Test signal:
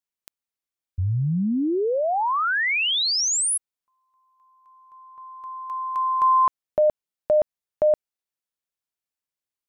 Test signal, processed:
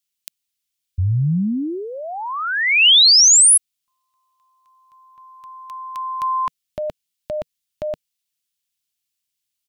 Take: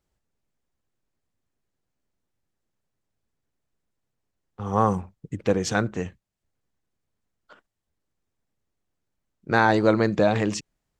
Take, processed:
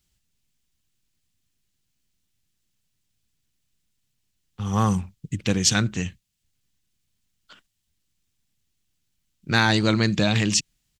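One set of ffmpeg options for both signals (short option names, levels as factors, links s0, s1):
-af "firequalizer=gain_entry='entry(160,0);entry(470,-13);entry(2900,7)':delay=0.05:min_phase=1,volume=1.78"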